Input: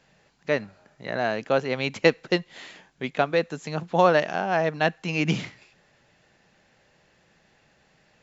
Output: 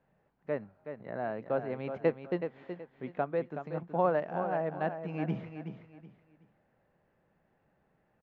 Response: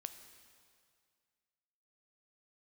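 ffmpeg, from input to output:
-af "lowpass=1200,aecho=1:1:374|748|1122:0.376|0.105|0.0295,volume=0.376"

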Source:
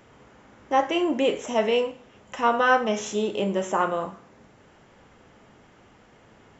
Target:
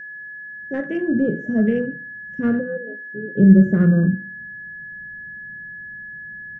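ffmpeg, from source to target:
-filter_complex "[0:a]acrossover=split=5300[s0][s1];[s1]acompressor=threshold=0.00126:ratio=4:attack=1:release=60[s2];[s0][s2]amix=inputs=2:normalize=0,asplit=3[s3][s4][s5];[s3]afade=t=out:st=2.59:d=0.02[s6];[s4]asplit=3[s7][s8][s9];[s7]bandpass=f=530:t=q:w=8,volume=1[s10];[s8]bandpass=f=1840:t=q:w=8,volume=0.501[s11];[s9]bandpass=f=2480:t=q:w=8,volume=0.355[s12];[s10][s11][s12]amix=inputs=3:normalize=0,afade=t=in:st=2.59:d=0.02,afade=t=out:st=3.36:d=0.02[s13];[s5]afade=t=in:st=3.36:d=0.02[s14];[s6][s13][s14]amix=inputs=3:normalize=0,afwtdn=0.0282,bandreject=f=50:t=h:w=6,bandreject=f=100:t=h:w=6,bandreject=f=150:t=h:w=6,bandreject=f=200:t=h:w=6,bandreject=f=250:t=h:w=6,bandreject=f=300:t=h:w=6,bandreject=f=350:t=h:w=6,asplit=2[s15][s16];[s16]adelay=74,lowpass=f=3700:p=1,volume=0.1,asplit=2[s17][s18];[s18]adelay=74,lowpass=f=3700:p=1,volume=0.45,asplit=2[s19][s20];[s20]adelay=74,lowpass=f=3700:p=1,volume=0.45[s21];[s17][s19][s21]amix=inputs=3:normalize=0[s22];[s15][s22]amix=inputs=2:normalize=0,asubboost=boost=11:cutoff=220,asplit=2[s23][s24];[s24]aeval=exprs='clip(val(0),-1,0.0841)':c=same,volume=0.266[s25];[s23][s25]amix=inputs=2:normalize=0,aeval=exprs='val(0)+0.0316*sin(2*PI*1700*n/s)':c=same,firequalizer=gain_entry='entry(110,0);entry(160,11);entry(250,2);entry(590,-3);entry(880,-27);entry(1600,-1);entry(2600,-17);entry(5300,-5);entry(9500,-11)':delay=0.05:min_phase=1"

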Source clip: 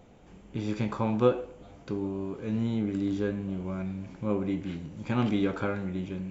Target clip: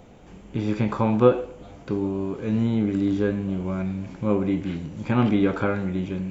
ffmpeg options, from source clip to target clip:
-filter_complex "[0:a]acrossover=split=3000[s0][s1];[s1]acompressor=threshold=0.00178:ratio=4:attack=1:release=60[s2];[s0][s2]amix=inputs=2:normalize=0,volume=2.11"

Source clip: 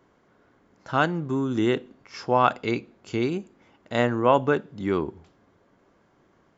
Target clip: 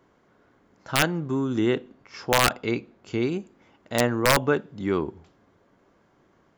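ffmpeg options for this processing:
-filter_complex "[0:a]asettb=1/sr,asplit=3[s0][s1][s2];[s0]atrim=end=1.604[s3];[s1]atrim=start=1.6:end=3.27,asetpts=PTS-STARTPTS,afade=t=in:d=0.004:c=qsin,afade=t=out:st=1.666:d=0.004:c=qsin,highshelf=f=4900:g=-5[s4];[s2]atrim=start=3.266[s5];[s3][s4]acrossfade=d=0.004:c1=hsin:c2=qsin[s6];[s6][s5]acrossfade=d=0.004:c1=qsin:c2=hsin,aeval=exprs='(mod(2.99*val(0)+1,2)-1)/2.99':c=same"

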